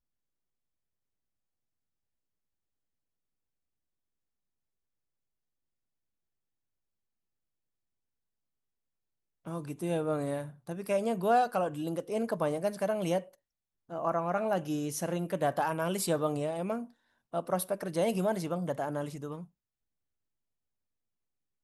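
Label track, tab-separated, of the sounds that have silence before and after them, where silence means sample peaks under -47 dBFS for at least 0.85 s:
9.450000	19.450000	sound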